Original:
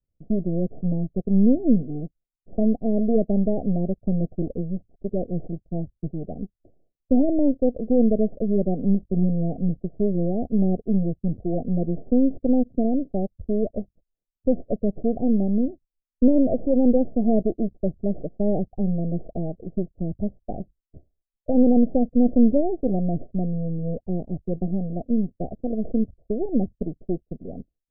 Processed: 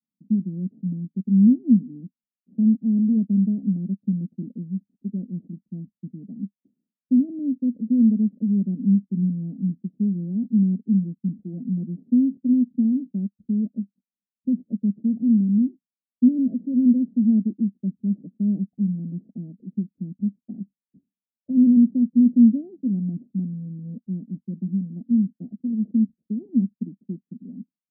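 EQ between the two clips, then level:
flat-topped band-pass 220 Hz, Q 2.9
+3.5 dB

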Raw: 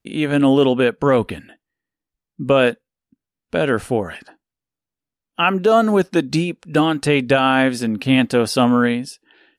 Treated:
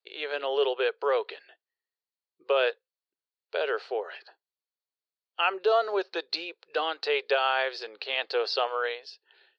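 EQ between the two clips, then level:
elliptic high-pass filter 400 Hz, stop band 40 dB
low-pass with resonance 4,400 Hz, resonance Q 6.7
high-frequency loss of the air 150 metres
−8.5 dB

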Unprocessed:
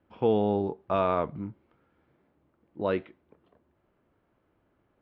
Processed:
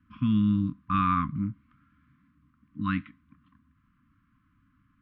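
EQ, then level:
linear-phase brick-wall band-stop 300–1,000 Hz
low-pass filter 1,600 Hz 6 dB per octave
+7.5 dB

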